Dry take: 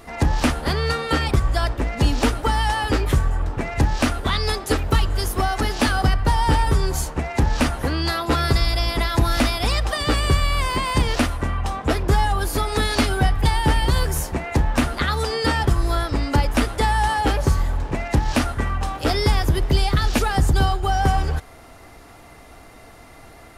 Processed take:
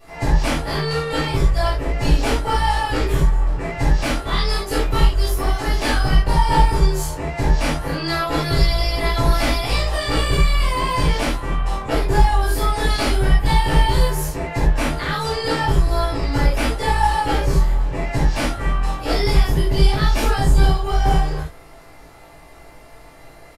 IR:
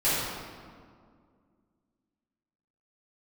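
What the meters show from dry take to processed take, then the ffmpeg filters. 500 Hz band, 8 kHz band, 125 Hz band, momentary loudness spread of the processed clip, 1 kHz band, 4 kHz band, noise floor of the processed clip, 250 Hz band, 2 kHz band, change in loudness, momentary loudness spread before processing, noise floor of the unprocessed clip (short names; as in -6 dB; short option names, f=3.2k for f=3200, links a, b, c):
+2.0 dB, -0.5 dB, +1.0 dB, 5 LU, +1.0 dB, +0.5 dB, -43 dBFS, -0.5 dB, +0.5 dB, +1.5 dB, 4 LU, -44 dBFS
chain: -filter_complex "[0:a]asplit=2[a][b];[b]adelay=18,volume=-4dB[c];[a][c]amix=inputs=2:normalize=0,aeval=exprs='0.631*(cos(1*acos(clip(val(0)/0.631,-1,1)))-cos(1*PI/2))+0.0891*(cos(2*acos(clip(val(0)/0.631,-1,1)))-cos(2*PI/2))+0.0447*(cos(3*acos(clip(val(0)/0.631,-1,1)))-cos(3*PI/2))':c=same[d];[1:a]atrim=start_sample=2205,atrim=end_sample=4410[e];[d][e]afir=irnorm=-1:irlink=0,volume=-10.5dB"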